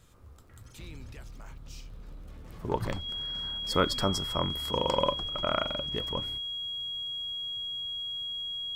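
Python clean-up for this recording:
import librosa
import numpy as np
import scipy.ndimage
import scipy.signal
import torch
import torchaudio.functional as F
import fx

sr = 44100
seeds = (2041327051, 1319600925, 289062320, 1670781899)

y = fx.fix_declick_ar(x, sr, threshold=6.5)
y = fx.notch(y, sr, hz=3300.0, q=30.0)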